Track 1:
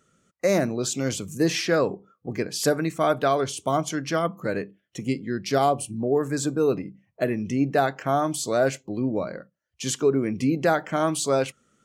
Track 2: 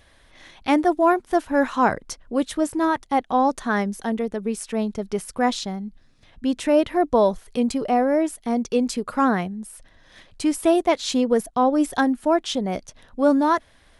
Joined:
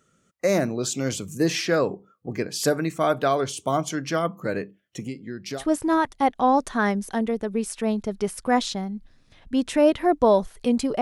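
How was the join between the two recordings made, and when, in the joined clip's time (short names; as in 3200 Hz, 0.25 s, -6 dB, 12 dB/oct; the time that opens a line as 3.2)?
track 1
5.02–5.65 compressor 2.5:1, threshold -33 dBFS
5.6 switch to track 2 from 2.51 s, crossfade 0.10 s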